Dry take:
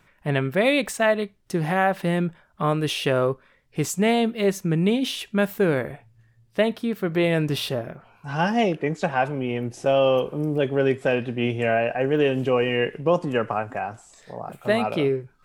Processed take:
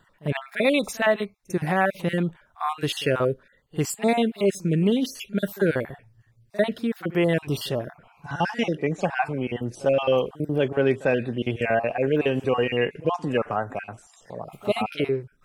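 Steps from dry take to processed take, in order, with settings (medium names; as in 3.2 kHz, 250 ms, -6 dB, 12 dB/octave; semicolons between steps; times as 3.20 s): random holes in the spectrogram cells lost 33%; reverse echo 48 ms -21 dB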